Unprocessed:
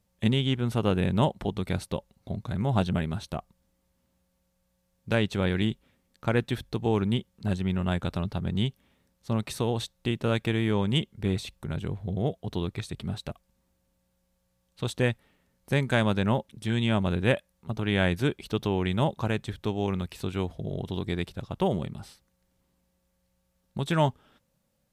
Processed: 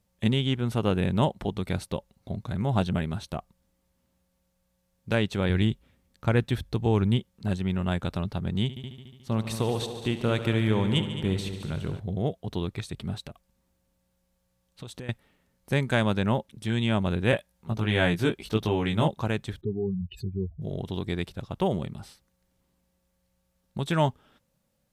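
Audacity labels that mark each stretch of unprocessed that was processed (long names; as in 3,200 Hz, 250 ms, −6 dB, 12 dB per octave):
5.490000	7.190000	parametric band 69 Hz +8.5 dB 1.6 octaves
8.620000	12.000000	echo machine with several playback heads 72 ms, heads all three, feedback 51%, level −14 dB
13.240000	15.090000	downward compressor, threshold −36 dBFS
17.310000	19.080000	double-tracking delay 18 ms −3 dB
19.610000	20.620000	expanding power law on the bin magnitudes exponent 3.6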